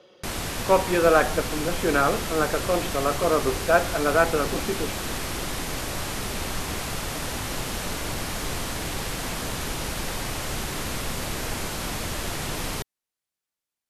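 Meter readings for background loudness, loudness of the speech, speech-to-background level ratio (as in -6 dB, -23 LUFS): -30.0 LUFS, -23.5 LUFS, 6.5 dB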